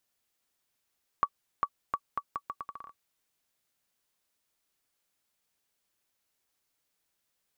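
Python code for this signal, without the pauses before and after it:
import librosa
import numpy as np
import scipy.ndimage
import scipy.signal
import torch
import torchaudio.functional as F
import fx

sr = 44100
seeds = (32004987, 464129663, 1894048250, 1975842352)

y = fx.bouncing_ball(sr, first_gap_s=0.4, ratio=0.77, hz=1140.0, decay_ms=58.0, level_db=-13.5)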